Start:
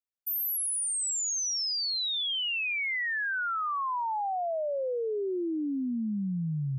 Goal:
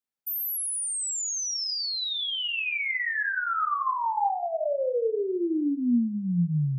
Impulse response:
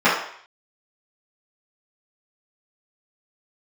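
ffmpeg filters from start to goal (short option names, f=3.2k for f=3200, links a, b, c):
-filter_complex "[0:a]asplit=2[a][b];[1:a]atrim=start_sample=2205,lowshelf=f=360:g=9[c];[b][c]afir=irnorm=-1:irlink=0,volume=-26dB[d];[a][d]amix=inputs=2:normalize=0"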